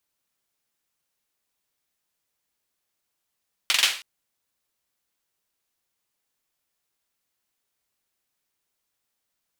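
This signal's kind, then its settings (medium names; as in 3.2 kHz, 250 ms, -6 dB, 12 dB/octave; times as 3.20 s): hand clap length 0.32 s, bursts 4, apart 43 ms, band 2.8 kHz, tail 0.39 s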